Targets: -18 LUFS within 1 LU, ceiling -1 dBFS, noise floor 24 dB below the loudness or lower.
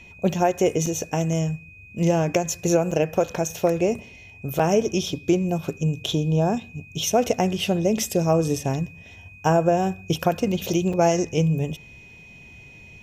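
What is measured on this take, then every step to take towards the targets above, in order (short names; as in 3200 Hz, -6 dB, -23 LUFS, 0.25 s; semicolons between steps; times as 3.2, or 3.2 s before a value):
dropouts 4; longest dropout 5.1 ms; steady tone 2500 Hz; tone level -45 dBFS; loudness -23.0 LUFS; peak -8.0 dBFS; loudness target -18.0 LUFS
-> interpolate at 0.86/2.91/4.59/10.93, 5.1 ms; notch 2500 Hz, Q 30; gain +5 dB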